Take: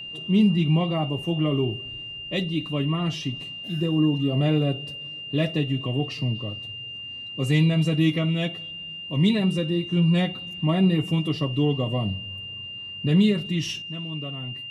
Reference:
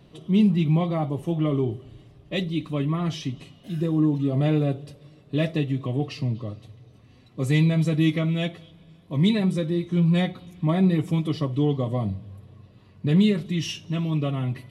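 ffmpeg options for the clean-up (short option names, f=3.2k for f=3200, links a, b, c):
-af "bandreject=f=2.8k:w=30,asetnsamples=n=441:p=0,asendcmd='13.82 volume volume 9dB',volume=0dB"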